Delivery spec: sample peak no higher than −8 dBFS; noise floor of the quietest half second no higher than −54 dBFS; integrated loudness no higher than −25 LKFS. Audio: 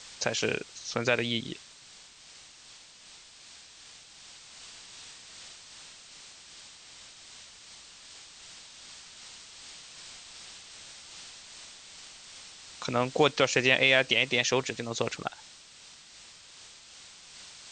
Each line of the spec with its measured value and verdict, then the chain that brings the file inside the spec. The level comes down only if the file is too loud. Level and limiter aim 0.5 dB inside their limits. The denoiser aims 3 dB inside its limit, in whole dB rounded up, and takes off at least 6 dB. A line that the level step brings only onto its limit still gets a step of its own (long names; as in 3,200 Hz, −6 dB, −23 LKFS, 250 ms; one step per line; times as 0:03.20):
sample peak −7.0 dBFS: out of spec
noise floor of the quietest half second −53 dBFS: out of spec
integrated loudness −27.0 LKFS: in spec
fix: broadband denoise 6 dB, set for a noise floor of −53 dBFS
brickwall limiter −8.5 dBFS